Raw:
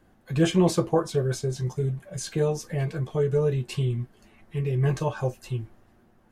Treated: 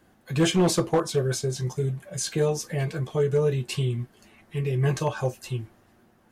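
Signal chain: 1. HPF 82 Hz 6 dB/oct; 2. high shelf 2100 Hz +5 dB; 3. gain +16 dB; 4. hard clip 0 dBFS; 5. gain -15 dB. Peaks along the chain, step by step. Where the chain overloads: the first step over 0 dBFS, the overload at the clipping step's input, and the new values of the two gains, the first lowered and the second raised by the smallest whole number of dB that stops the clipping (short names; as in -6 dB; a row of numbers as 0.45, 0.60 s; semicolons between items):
-10.0, -9.5, +6.5, 0.0, -15.0 dBFS; step 3, 6.5 dB; step 3 +9 dB, step 5 -8 dB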